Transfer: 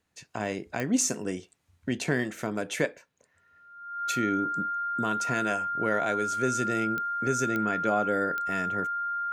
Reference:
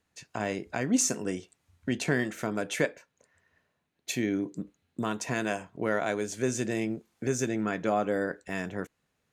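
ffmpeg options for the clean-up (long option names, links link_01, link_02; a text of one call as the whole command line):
ffmpeg -i in.wav -af "adeclick=threshold=4,bandreject=frequency=1400:width=30" out.wav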